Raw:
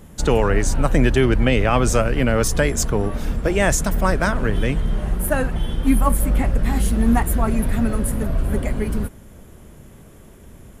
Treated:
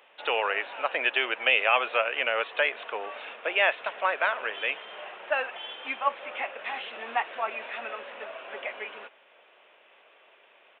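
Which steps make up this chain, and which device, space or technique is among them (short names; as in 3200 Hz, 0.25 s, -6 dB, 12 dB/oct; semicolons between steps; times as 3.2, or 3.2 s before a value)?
musical greeting card (downsampling 8000 Hz; HPF 580 Hz 24 dB/oct; bell 2600 Hz +10.5 dB 0.49 oct); gain -4 dB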